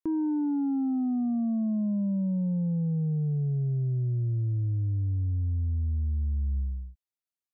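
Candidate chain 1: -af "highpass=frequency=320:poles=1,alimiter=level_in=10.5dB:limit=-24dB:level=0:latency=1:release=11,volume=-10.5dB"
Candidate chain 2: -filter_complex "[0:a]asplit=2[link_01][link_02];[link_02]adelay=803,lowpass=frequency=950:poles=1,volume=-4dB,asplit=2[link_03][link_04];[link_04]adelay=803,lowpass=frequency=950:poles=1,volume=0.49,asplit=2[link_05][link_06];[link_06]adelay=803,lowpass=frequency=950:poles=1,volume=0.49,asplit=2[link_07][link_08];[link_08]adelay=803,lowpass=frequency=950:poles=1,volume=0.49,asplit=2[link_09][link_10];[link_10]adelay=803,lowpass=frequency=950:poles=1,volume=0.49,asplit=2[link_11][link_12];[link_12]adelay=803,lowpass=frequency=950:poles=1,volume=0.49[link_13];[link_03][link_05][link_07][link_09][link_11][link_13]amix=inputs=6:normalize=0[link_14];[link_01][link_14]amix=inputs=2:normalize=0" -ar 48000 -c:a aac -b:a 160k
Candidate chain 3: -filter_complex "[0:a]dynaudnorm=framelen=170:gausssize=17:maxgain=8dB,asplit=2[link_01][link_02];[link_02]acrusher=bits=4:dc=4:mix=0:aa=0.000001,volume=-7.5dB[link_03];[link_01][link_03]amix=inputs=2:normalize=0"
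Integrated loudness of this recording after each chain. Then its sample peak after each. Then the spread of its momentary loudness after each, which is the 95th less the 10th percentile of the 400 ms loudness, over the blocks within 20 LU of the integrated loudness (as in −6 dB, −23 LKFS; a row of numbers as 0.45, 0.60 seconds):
−40.5, −27.5, −19.0 LKFS; −34.5, −18.0, −12.0 dBFS; 3, 2, 9 LU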